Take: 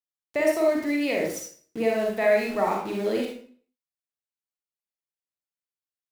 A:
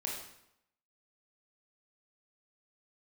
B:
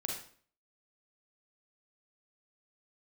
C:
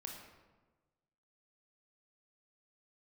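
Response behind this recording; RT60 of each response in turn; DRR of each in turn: B; 0.80, 0.50, 1.3 seconds; −2.5, −0.5, 0.5 decibels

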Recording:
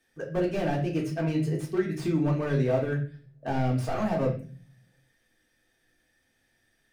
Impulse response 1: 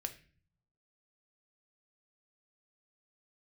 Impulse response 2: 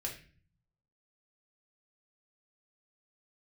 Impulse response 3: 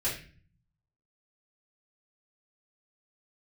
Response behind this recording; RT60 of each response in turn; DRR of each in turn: 2; 0.40, 0.40, 0.40 seconds; 6.5, −1.5, −10.5 decibels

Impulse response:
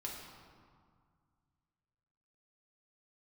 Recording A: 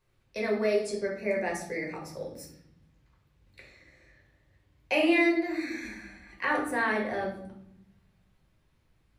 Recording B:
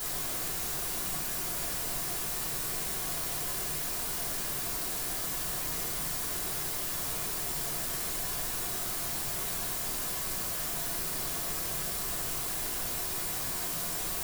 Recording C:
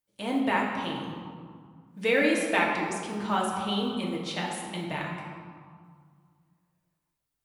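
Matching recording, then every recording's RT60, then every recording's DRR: C; 0.75, 0.55, 1.9 seconds; −2.0, −6.5, −3.0 decibels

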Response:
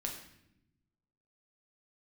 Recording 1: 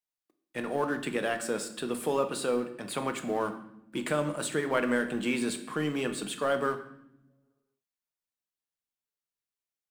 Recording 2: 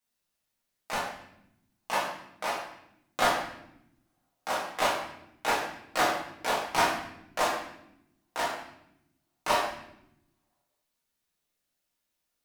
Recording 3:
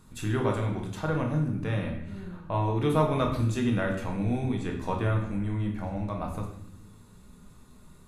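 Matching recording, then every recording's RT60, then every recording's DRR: 3; 0.85, 0.80, 0.80 seconds; 7.0, −6.5, 0.5 decibels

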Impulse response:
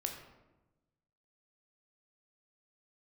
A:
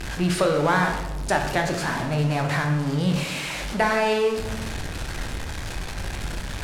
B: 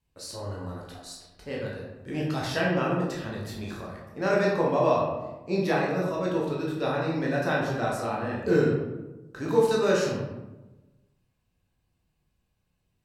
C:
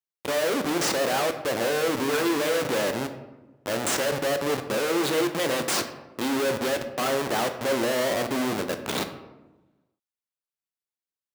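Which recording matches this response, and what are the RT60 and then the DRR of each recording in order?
A; 1.1, 1.1, 1.1 seconds; 2.5, −4.0, 7.0 decibels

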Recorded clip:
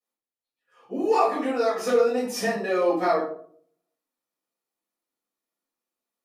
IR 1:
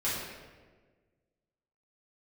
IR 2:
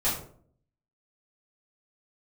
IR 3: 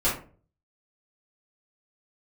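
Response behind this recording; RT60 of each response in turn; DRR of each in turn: 2; 1.4, 0.55, 0.40 seconds; −11.0, −11.0, −9.0 decibels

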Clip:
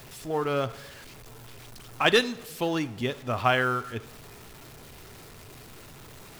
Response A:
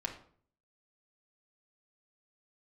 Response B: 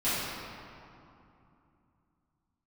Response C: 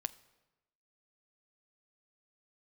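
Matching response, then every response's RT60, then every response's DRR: C; 0.55, 2.8, 1.1 seconds; −0.5, −15.0, 12.0 decibels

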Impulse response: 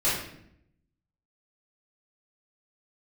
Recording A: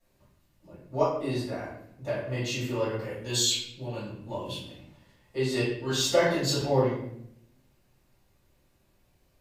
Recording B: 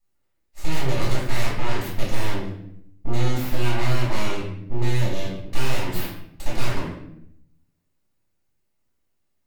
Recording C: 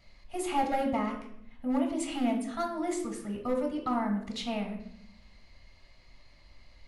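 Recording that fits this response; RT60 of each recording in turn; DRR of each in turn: A; 0.70, 0.70, 0.70 seconds; −11.5, −6.5, 2.5 decibels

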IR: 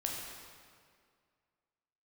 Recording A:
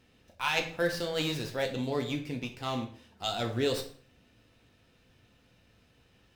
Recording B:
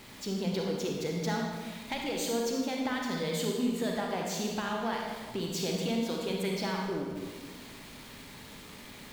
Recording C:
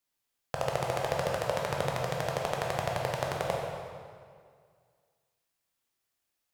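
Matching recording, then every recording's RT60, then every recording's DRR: C; 0.50, 1.5, 2.1 seconds; 3.0, −0.5, −1.5 decibels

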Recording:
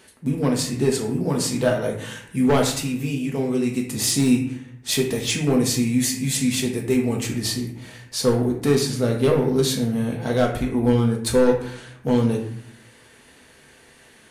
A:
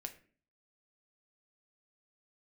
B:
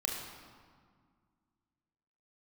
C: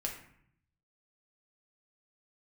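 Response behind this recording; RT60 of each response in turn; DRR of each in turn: C; 0.45, 1.9, 0.65 seconds; 5.0, −1.0, −0.5 decibels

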